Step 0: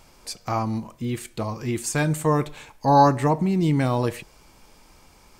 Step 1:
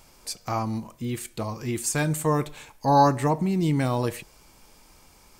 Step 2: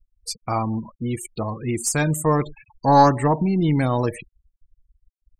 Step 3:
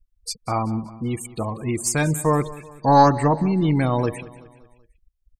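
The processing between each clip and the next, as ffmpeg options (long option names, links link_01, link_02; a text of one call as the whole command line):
ffmpeg -i in.wav -af "highshelf=frequency=6700:gain=7,volume=-2.5dB" out.wav
ffmpeg -i in.wav -af "afftfilt=real='re*gte(hypot(re,im),0.02)':imag='im*gte(hypot(re,im),0.02)':win_size=1024:overlap=0.75,aeval=exprs='0.447*(cos(1*acos(clip(val(0)/0.447,-1,1)))-cos(1*PI/2))+0.0447*(cos(2*acos(clip(val(0)/0.447,-1,1)))-cos(2*PI/2))':channel_layout=same,volume=4dB" out.wav
ffmpeg -i in.wav -af "aecho=1:1:190|380|570|760:0.126|0.0604|0.029|0.0139" out.wav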